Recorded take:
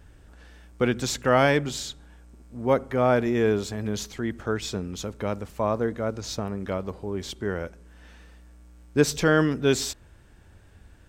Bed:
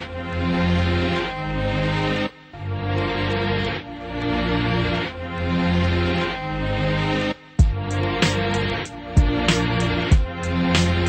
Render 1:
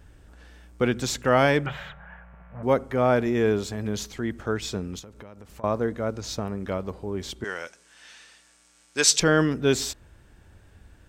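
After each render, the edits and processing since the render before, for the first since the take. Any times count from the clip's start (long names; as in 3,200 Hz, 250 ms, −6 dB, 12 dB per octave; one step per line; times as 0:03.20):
0:01.66–0:02.63: drawn EQ curve 100 Hz 0 dB, 180 Hz +8 dB, 280 Hz −22 dB, 580 Hz +10 dB, 1,800 Hz +15 dB, 2,900 Hz +3 dB, 4,500 Hz −24 dB, 9,400 Hz −29 dB, 13,000 Hz −15 dB
0:04.99–0:05.64: downward compressor, threshold −41 dBFS
0:07.44–0:09.20: meter weighting curve ITU-R 468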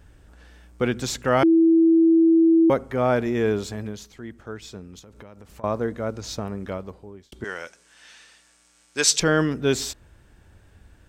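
0:01.43–0:02.70: beep over 328 Hz −12.5 dBFS
0:03.78–0:05.14: duck −8.5 dB, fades 0.19 s
0:06.59–0:07.32: fade out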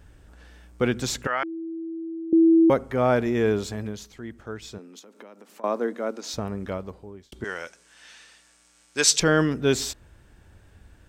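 0:01.27–0:02.33: resonant band-pass 1,700 Hz, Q 1.5
0:04.78–0:06.34: Butterworth high-pass 220 Hz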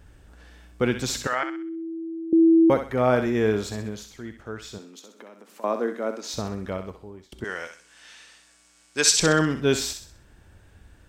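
feedback echo with a high-pass in the loop 64 ms, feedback 40%, high-pass 890 Hz, level −6.5 dB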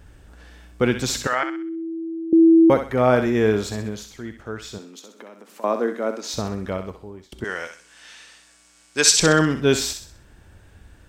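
level +3.5 dB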